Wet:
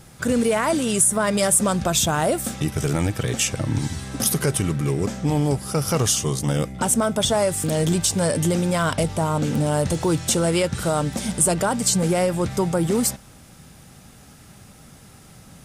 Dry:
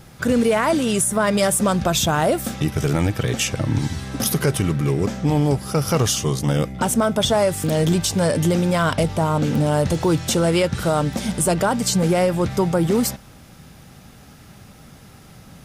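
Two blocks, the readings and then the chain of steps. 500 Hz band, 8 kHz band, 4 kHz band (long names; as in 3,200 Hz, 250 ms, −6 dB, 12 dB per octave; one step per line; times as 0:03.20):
−2.5 dB, +3.0 dB, −1.5 dB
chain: parametric band 8,600 Hz +7.5 dB 0.79 octaves
level −2.5 dB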